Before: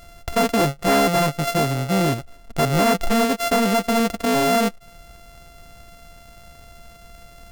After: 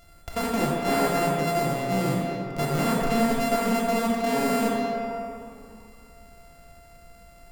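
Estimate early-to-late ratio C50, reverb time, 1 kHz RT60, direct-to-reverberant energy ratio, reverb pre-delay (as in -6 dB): -1.5 dB, 2.9 s, 3.0 s, -3.0 dB, 23 ms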